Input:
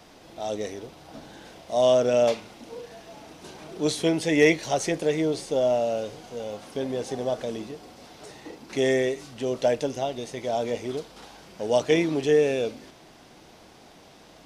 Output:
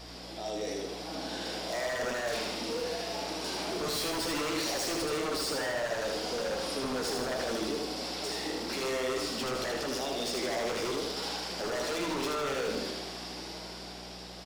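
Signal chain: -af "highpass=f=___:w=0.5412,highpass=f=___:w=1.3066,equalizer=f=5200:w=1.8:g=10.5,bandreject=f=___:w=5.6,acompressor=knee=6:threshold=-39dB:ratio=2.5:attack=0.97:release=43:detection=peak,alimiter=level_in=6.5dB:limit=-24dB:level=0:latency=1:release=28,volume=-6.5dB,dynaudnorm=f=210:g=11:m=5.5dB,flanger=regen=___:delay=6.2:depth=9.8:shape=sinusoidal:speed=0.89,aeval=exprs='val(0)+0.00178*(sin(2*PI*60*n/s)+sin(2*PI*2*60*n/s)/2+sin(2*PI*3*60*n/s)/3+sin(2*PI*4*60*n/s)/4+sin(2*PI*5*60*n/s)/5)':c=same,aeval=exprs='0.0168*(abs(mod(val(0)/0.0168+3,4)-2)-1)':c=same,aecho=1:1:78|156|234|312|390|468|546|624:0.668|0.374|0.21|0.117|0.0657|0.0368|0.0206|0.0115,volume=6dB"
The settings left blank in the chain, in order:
230, 230, 6200, -32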